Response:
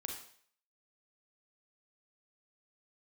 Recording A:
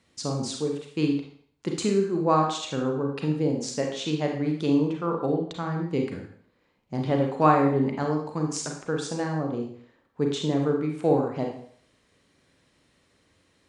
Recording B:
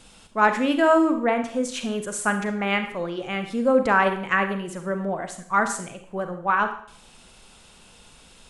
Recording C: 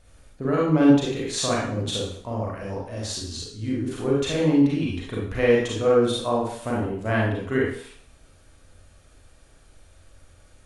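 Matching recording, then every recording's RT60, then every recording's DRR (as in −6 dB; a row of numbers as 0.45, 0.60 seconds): A; 0.55, 0.55, 0.55 seconds; 1.5, 7.0, −5.0 decibels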